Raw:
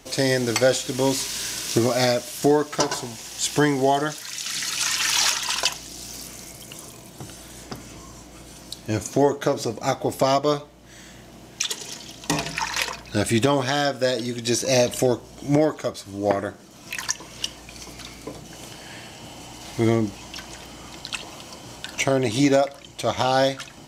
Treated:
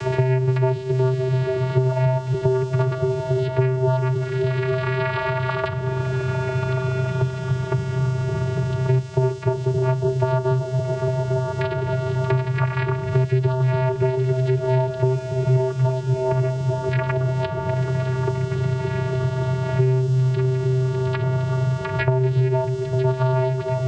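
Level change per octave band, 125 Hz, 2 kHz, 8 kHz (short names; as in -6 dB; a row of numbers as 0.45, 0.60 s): +13.5 dB, -2.5 dB, under -20 dB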